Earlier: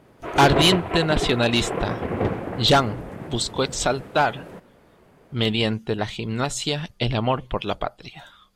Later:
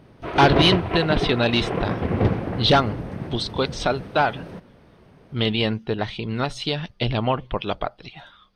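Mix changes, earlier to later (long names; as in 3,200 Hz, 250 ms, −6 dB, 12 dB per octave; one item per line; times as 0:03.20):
background: add bass and treble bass +7 dB, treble +11 dB
master: add Savitzky-Golay smoothing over 15 samples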